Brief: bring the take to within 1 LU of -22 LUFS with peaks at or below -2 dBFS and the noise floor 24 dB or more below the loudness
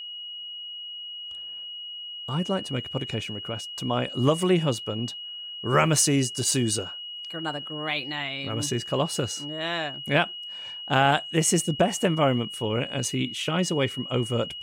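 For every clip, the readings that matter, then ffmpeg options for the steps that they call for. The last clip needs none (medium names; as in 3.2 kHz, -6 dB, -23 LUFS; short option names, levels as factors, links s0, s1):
steady tone 2.9 kHz; tone level -35 dBFS; loudness -26.5 LUFS; peak level -7.5 dBFS; loudness target -22.0 LUFS
-> -af "bandreject=f=2900:w=30"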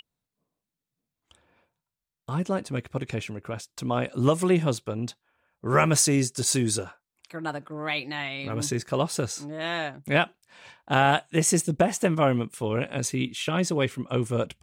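steady tone not found; loudness -26.0 LUFS; peak level -8.0 dBFS; loudness target -22.0 LUFS
-> -af "volume=1.58"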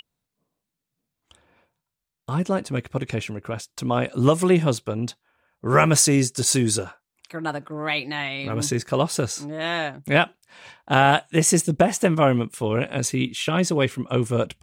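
loudness -22.0 LUFS; peak level -4.0 dBFS; noise floor -84 dBFS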